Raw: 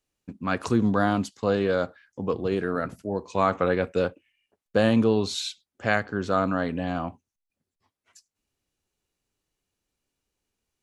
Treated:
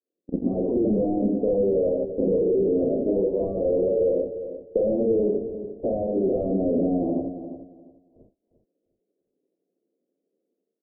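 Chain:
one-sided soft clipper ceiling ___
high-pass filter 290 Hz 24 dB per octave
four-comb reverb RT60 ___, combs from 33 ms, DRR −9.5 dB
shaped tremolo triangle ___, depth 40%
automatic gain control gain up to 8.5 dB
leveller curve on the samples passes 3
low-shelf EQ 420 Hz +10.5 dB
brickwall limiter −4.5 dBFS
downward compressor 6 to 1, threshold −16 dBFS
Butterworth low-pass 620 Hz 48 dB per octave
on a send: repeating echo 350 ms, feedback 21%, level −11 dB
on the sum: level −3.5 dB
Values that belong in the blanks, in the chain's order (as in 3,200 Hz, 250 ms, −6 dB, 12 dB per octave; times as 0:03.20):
−23 dBFS, 0.49 s, 12 Hz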